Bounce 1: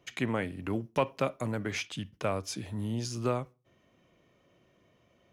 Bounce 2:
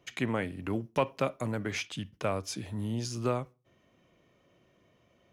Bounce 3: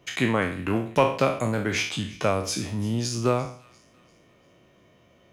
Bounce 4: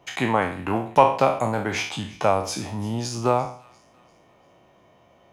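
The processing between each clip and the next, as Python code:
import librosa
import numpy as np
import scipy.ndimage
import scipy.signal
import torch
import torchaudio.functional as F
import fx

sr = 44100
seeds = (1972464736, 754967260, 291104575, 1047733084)

y1 = x
y2 = fx.spec_trails(y1, sr, decay_s=0.48)
y2 = fx.echo_wet_highpass(y2, sr, ms=345, feedback_pct=41, hz=1700.0, wet_db=-20.5)
y2 = y2 * 10.0 ** (6.5 / 20.0)
y3 = fx.peak_eq(y2, sr, hz=830.0, db=13.5, octaves=0.72)
y3 = y3 * 10.0 ** (-1.5 / 20.0)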